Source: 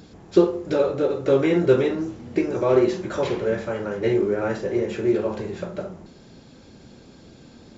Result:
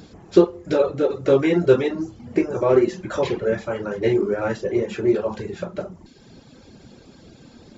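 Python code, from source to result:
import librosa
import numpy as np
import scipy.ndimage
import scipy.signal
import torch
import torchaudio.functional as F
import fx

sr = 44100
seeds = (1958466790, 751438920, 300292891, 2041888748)

y = fx.dereverb_blind(x, sr, rt60_s=0.73)
y = fx.peak_eq(y, sr, hz=3800.0, db=-6.5, octaves=0.78, at=(2.25, 2.98))
y = F.gain(torch.from_numpy(y), 2.5).numpy()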